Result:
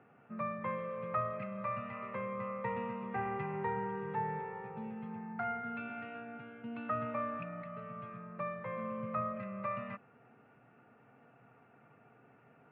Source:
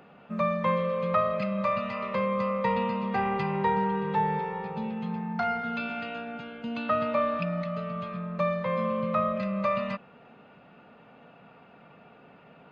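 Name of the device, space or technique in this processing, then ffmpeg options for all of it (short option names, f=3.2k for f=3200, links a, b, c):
bass cabinet: -af "highpass=87,equalizer=f=120:t=q:w=4:g=10,equalizer=f=180:t=q:w=4:g=-10,equalizer=f=570:t=q:w=4:g=-7,equalizer=f=1k:t=q:w=4:g=-5,lowpass=f=2.2k:w=0.5412,lowpass=f=2.2k:w=1.3066,volume=-7dB"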